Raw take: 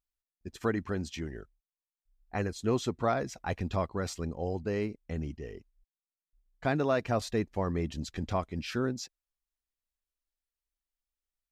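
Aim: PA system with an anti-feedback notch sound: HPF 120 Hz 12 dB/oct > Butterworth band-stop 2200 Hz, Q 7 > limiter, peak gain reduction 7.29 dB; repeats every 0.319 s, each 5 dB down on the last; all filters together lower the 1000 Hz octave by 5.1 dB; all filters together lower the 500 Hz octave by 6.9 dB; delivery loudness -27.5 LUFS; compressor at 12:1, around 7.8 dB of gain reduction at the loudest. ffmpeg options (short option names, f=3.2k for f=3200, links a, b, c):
-af "equalizer=f=500:t=o:g=-8,equalizer=f=1k:t=o:g=-4,acompressor=threshold=-35dB:ratio=12,highpass=120,asuperstop=centerf=2200:order=8:qfactor=7,aecho=1:1:319|638|957|1276|1595|1914|2233:0.562|0.315|0.176|0.0988|0.0553|0.031|0.0173,volume=17dB,alimiter=limit=-16dB:level=0:latency=1"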